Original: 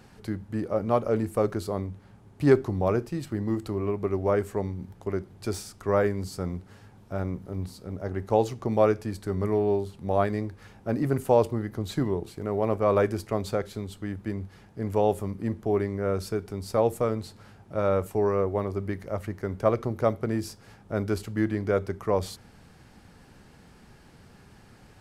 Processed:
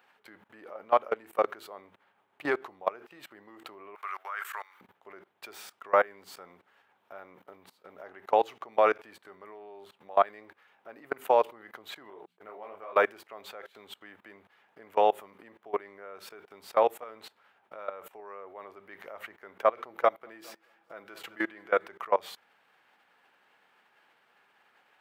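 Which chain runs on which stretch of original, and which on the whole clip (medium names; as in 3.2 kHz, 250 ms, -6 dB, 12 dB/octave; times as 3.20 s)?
3.95–4.81 s: resonant high-pass 1.3 kHz, resonance Q 2.7 + treble shelf 3.9 kHz +10.5 dB
12.10–12.93 s: gate -36 dBFS, range -24 dB + hum notches 60/120/180/240 Hz + detune thickener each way 51 cents
19.89–21.87 s: comb 6 ms, depth 38% + feedback delay 211 ms, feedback 50%, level -20 dB
whole clip: level held to a coarse grid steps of 22 dB; high-pass 830 Hz 12 dB/octave; high-order bell 7.2 kHz -14.5 dB; trim +9 dB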